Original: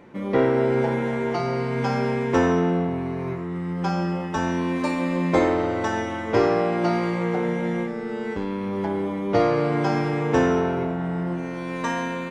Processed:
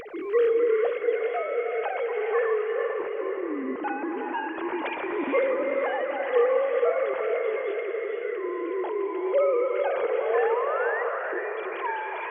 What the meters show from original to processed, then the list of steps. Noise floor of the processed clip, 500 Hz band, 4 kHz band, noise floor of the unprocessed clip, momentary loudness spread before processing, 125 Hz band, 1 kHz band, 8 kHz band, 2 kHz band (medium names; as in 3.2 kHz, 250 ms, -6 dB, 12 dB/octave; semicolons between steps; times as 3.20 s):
-33 dBFS, 0.0 dB, no reading, -30 dBFS, 8 LU, under -35 dB, -4.0 dB, under -35 dB, -1.0 dB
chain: formants replaced by sine waves; upward compressor, threshold -24 dBFS; painted sound rise, 10.01–11.03 s, 410–2000 Hz -27 dBFS; echo that smears into a reverb 492 ms, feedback 49%, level -9 dB; gated-style reverb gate 480 ms rising, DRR 4 dB; trim -5 dB